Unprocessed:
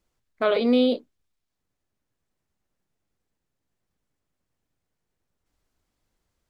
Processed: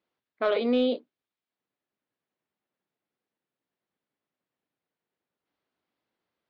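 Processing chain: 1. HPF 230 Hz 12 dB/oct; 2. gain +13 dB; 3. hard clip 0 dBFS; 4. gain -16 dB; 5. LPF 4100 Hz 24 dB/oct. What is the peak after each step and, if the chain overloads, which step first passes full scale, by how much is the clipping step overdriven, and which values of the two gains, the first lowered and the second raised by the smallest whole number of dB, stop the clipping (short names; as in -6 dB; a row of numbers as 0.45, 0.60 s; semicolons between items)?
-10.0, +3.0, 0.0, -16.0, -15.5 dBFS; step 2, 3.0 dB; step 2 +10 dB, step 4 -13 dB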